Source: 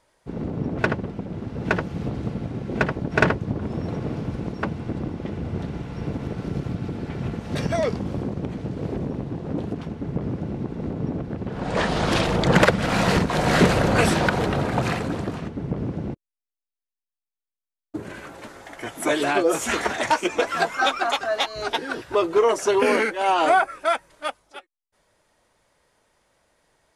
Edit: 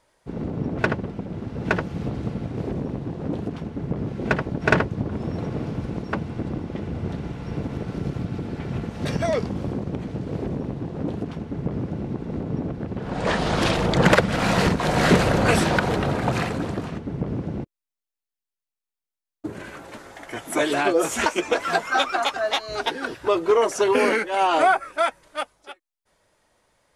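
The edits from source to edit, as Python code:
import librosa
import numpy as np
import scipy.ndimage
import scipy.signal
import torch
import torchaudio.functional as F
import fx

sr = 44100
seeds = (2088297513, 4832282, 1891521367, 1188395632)

y = fx.edit(x, sr, fx.duplicate(start_s=8.82, length_s=1.5, to_s=2.57),
    fx.cut(start_s=19.76, length_s=0.37), tone=tone)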